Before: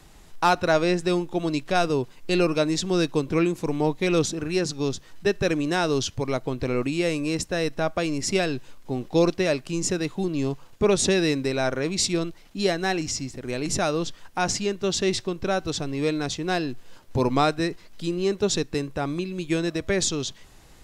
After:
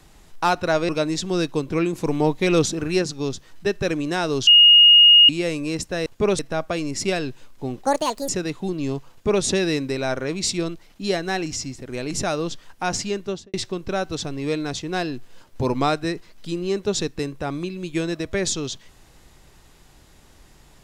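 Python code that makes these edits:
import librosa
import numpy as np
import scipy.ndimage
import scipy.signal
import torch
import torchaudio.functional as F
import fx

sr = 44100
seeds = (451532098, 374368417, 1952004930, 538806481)

y = fx.studio_fade_out(x, sr, start_s=14.76, length_s=0.33)
y = fx.edit(y, sr, fx.cut(start_s=0.89, length_s=1.6),
    fx.clip_gain(start_s=3.53, length_s=1.09, db=3.5),
    fx.bleep(start_s=6.07, length_s=0.82, hz=2860.0, db=-7.5),
    fx.speed_span(start_s=9.12, length_s=0.72, speed=1.65),
    fx.duplicate(start_s=10.67, length_s=0.33, to_s=7.66), tone=tone)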